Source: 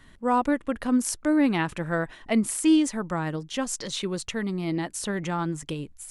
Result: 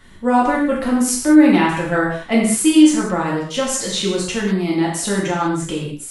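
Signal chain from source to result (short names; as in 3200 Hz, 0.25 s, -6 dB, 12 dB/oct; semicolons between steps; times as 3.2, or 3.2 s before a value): non-linear reverb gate 0.23 s falling, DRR -5 dB; gain +3.5 dB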